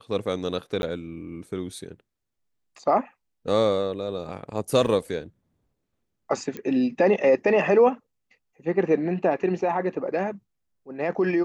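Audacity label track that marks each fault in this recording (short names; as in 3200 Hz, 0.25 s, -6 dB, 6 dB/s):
0.820000	0.830000	gap 11 ms
4.870000	4.870000	gap 4.8 ms
6.570000	6.570000	pop -19 dBFS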